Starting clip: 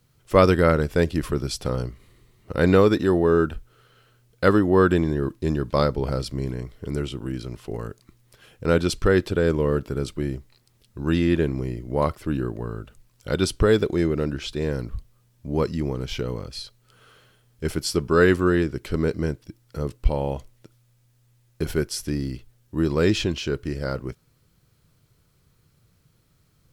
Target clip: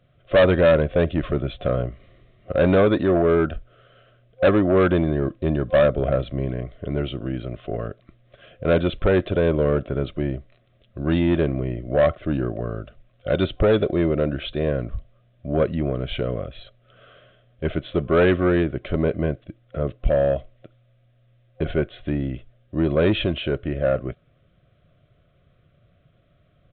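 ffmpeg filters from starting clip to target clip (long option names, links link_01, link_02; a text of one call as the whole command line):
ffmpeg -i in.wav -af "superequalizer=8b=3.55:9b=0.282,aresample=8000,asoftclip=type=tanh:threshold=-13.5dB,aresample=44100,volume=2.5dB" out.wav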